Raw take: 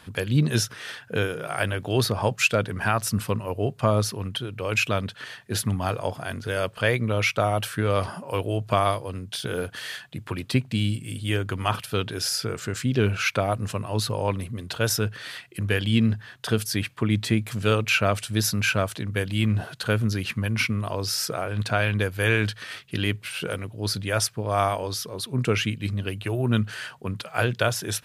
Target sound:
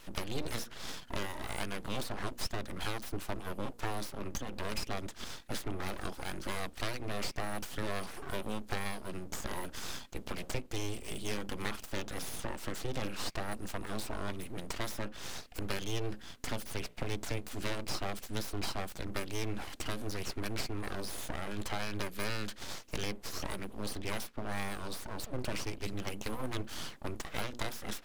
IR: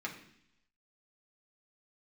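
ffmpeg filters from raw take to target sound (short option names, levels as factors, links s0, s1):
-filter_complex "[0:a]acrossover=split=200|3400[s0][s1][s2];[s0]acompressor=threshold=0.0141:ratio=4[s3];[s1]acompressor=threshold=0.02:ratio=4[s4];[s2]acompressor=threshold=0.00708:ratio=4[s5];[s3][s4][s5]amix=inputs=3:normalize=0,bandreject=f=60:t=h:w=6,bandreject=f=120:t=h:w=6,bandreject=f=180:t=h:w=6,bandreject=f=240:t=h:w=6,bandreject=f=300:t=h:w=6,bandreject=f=360:t=h:w=6,bandreject=f=420:t=h:w=6,aeval=exprs='abs(val(0))':c=same,volume=0.891"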